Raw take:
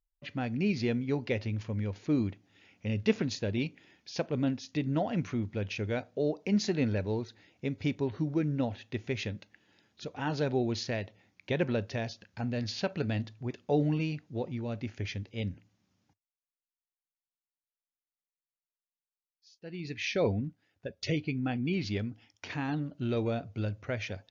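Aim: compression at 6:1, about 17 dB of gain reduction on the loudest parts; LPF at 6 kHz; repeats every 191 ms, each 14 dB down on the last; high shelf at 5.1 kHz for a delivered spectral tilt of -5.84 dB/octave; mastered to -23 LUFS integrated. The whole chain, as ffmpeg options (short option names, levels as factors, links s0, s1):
-af "lowpass=6000,highshelf=f=5100:g=-8,acompressor=threshold=0.00891:ratio=6,aecho=1:1:191|382:0.2|0.0399,volume=12.6"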